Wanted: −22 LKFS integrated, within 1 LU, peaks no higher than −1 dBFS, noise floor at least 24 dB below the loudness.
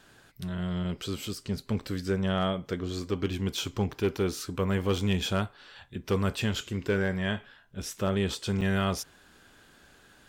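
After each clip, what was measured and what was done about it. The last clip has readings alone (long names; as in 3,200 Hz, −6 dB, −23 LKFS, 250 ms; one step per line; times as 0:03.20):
share of clipped samples 0.3%; peaks flattened at −19.0 dBFS; number of dropouts 1; longest dropout 5.7 ms; integrated loudness −30.5 LKFS; sample peak −19.0 dBFS; target loudness −22.0 LKFS
→ clipped peaks rebuilt −19 dBFS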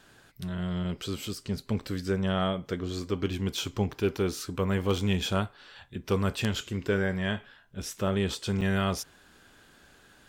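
share of clipped samples 0.0%; number of dropouts 1; longest dropout 5.7 ms
→ repair the gap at 0:08.61, 5.7 ms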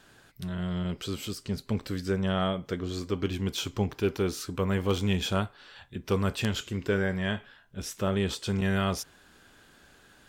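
number of dropouts 0; integrated loudness −30.5 LKFS; sample peak −10.0 dBFS; target loudness −22.0 LKFS
→ level +8.5 dB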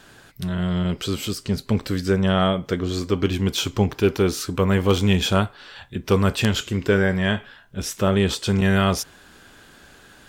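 integrated loudness −22.0 LKFS; sample peak −1.5 dBFS; background noise floor −50 dBFS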